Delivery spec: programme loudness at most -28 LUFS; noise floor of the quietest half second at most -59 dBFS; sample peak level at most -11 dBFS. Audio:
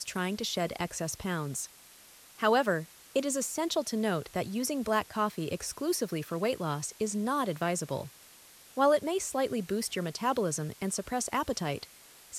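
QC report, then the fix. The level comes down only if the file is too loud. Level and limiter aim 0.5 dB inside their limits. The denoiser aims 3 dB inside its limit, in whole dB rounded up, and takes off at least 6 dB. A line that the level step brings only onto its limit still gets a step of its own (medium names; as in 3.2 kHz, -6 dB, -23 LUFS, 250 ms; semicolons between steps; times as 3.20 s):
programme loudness -31.5 LUFS: pass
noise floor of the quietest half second -55 dBFS: fail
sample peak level -12.5 dBFS: pass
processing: noise reduction 7 dB, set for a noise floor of -55 dBFS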